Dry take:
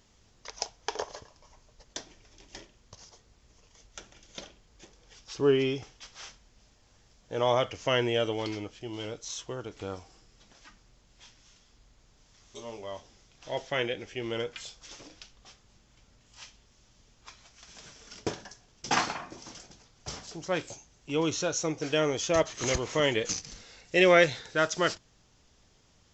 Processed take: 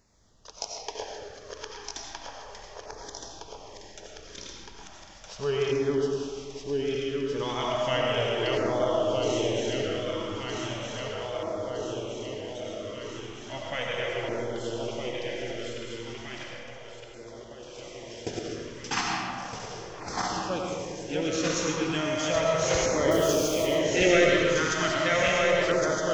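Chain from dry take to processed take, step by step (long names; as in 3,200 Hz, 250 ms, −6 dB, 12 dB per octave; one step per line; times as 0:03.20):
feedback delay that plays each chunk backwards 632 ms, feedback 81%, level −2.5 dB
0:16.43–0:17.75: output level in coarse steps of 11 dB
0:23.11–0:23.66: bit-depth reduction 6 bits, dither none
comb and all-pass reverb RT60 2 s, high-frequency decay 0.5×, pre-delay 50 ms, DRR −1 dB
auto-filter notch saw down 0.35 Hz 240–3,300 Hz
level −2.5 dB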